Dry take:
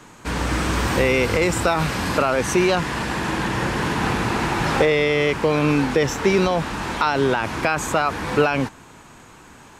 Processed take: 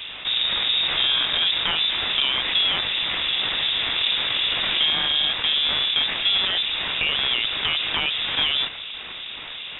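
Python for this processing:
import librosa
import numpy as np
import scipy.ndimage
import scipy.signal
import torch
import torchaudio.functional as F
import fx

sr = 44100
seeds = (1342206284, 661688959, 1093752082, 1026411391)

y = fx.halfwave_hold(x, sr)
y = fx.harmonic_tremolo(y, sr, hz=2.7, depth_pct=50, crossover_hz=1500.0)
y = np.repeat(y[::6], 6)[:len(y)]
y = fx.freq_invert(y, sr, carrier_hz=3700)
y = fx.env_flatten(y, sr, amount_pct=50)
y = y * 10.0 ** (-8.5 / 20.0)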